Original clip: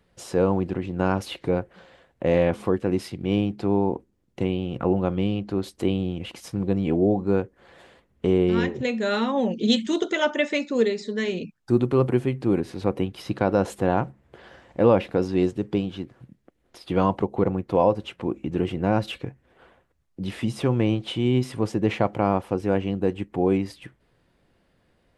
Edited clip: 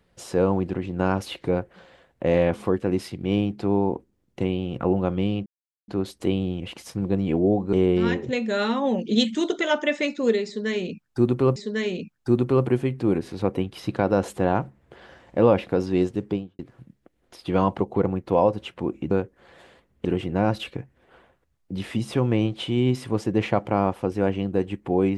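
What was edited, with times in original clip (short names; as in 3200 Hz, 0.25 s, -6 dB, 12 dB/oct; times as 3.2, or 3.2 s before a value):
5.46 insert silence 0.42 s
7.31–8.25 move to 18.53
10.98–12.08 loop, 2 plays
15.66–16.01 studio fade out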